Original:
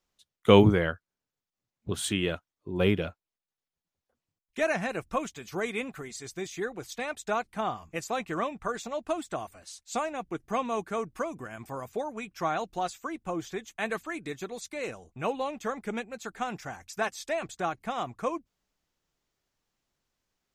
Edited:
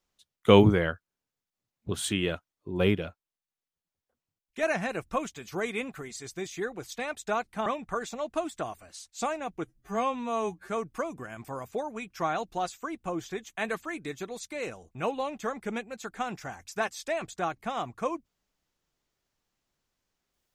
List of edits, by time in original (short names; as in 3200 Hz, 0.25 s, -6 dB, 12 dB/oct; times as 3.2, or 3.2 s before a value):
2.95–4.63 gain -3 dB
7.66–8.39 cut
10.38–10.9 stretch 2×